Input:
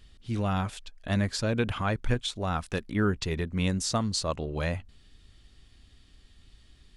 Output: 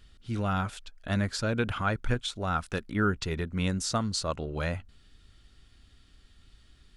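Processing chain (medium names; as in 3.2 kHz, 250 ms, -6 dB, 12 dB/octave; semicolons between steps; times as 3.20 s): peaking EQ 1.4 kHz +8 dB 0.25 oct; trim -1.5 dB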